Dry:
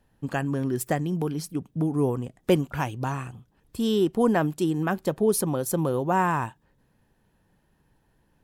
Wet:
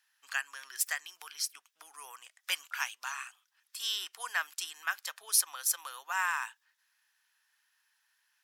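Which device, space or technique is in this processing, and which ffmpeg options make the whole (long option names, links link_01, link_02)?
headphones lying on a table: -af "highpass=frequency=1400:width=0.5412,highpass=frequency=1400:width=1.3066,equalizer=frequency=5500:width_type=o:width=0.56:gain=6,volume=2dB"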